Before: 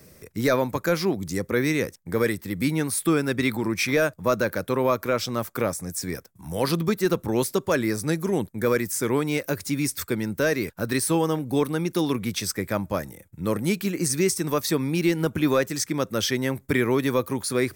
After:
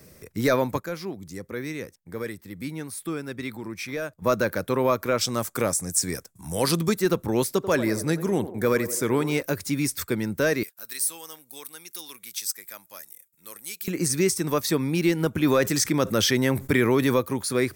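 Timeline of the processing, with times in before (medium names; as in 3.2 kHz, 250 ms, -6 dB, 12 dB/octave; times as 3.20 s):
0.80–4.22 s: gain -9.5 dB
5.21–7.00 s: peaking EQ 8.1 kHz +10 dB 1.2 oct
7.52–9.42 s: band-passed feedback delay 88 ms, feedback 62%, band-pass 550 Hz, level -10.5 dB
10.63–13.88 s: differentiator
15.44–17.19 s: level flattener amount 50%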